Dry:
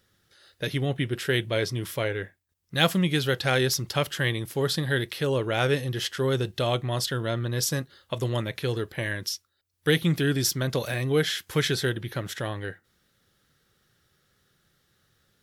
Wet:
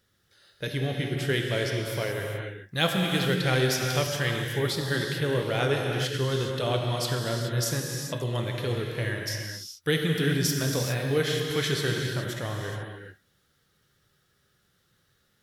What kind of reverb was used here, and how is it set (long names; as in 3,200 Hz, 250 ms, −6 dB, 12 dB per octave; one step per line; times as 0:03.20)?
reverb whose tail is shaped and stops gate 450 ms flat, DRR 0.5 dB
level −3.5 dB